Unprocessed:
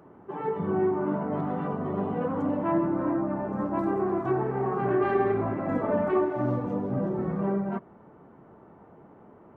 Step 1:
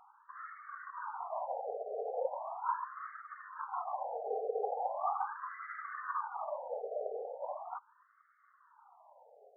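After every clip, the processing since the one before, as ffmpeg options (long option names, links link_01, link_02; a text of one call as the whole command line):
ffmpeg -i in.wav -af "afftfilt=real='hypot(re,im)*cos(2*PI*random(0))':imag='hypot(re,im)*sin(2*PI*random(1))':win_size=512:overlap=0.75,acompressor=mode=upward:threshold=-53dB:ratio=2.5,afftfilt=real='re*between(b*sr/1024,560*pow(1600/560,0.5+0.5*sin(2*PI*0.39*pts/sr))/1.41,560*pow(1600/560,0.5+0.5*sin(2*PI*0.39*pts/sr))*1.41)':imag='im*between(b*sr/1024,560*pow(1600/560,0.5+0.5*sin(2*PI*0.39*pts/sr))/1.41,560*pow(1600/560,0.5+0.5*sin(2*PI*0.39*pts/sr))*1.41)':win_size=1024:overlap=0.75,volume=3dB" out.wav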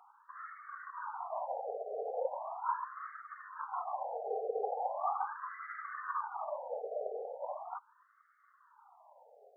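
ffmpeg -i in.wav -af "highpass=frequency=330:width=0.5412,highpass=frequency=330:width=1.3066" out.wav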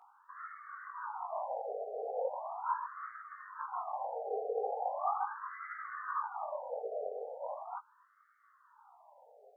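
ffmpeg -i in.wav -af "flanger=delay=17:depth=4.4:speed=1.9,volume=3dB" out.wav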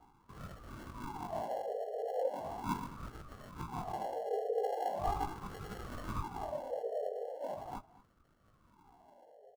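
ffmpeg -i in.wav -filter_complex "[0:a]acrossover=split=760|870[link_01][link_02][link_03];[link_03]acrusher=samples=36:mix=1:aa=0.000001[link_04];[link_01][link_02][link_04]amix=inputs=3:normalize=0,asplit=2[link_05][link_06];[link_06]adelay=221.6,volume=-19dB,highshelf=frequency=4000:gain=-4.99[link_07];[link_05][link_07]amix=inputs=2:normalize=0,volume=1.5dB" out.wav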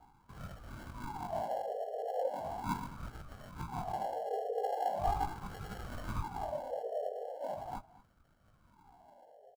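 ffmpeg -i in.wav -af "aecho=1:1:1.3:0.38" out.wav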